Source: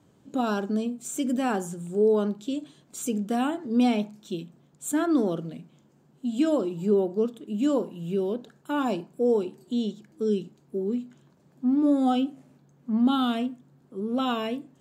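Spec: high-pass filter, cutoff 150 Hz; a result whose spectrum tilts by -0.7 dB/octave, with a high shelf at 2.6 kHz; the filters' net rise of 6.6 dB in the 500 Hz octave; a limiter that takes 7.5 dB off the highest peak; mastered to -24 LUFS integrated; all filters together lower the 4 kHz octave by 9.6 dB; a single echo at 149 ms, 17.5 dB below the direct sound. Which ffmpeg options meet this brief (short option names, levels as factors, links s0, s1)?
-af "highpass=150,equalizer=f=500:t=o:g=8.5,highshelf=f=2600:g=-7,equalizer=f=4000:t=o:g=-8,alimiter=limit=0.168:level=0:latency=1,aecho=1:1:149:0.133,volume=1.26"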